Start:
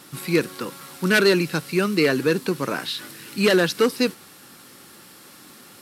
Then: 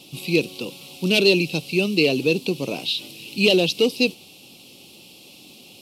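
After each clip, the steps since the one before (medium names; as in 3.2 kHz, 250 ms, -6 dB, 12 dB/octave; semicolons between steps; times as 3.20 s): FFT filter 740 Hz 0 dB, 1.7 kHz -29 dB, 2.6 kHz +9 dB, 8.2 kHz -4 dB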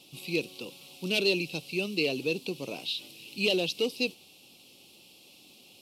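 peaking EQ 160 Hz -4 dB 2.4 oct; trim -8.5 dB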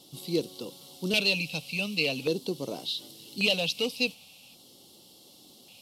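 LFO notch square 0.44 Hz 360–2500 Hz; trim +3 dB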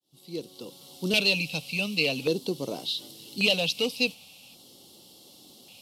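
fade-in on the opening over 1.06 s; trim +2 dB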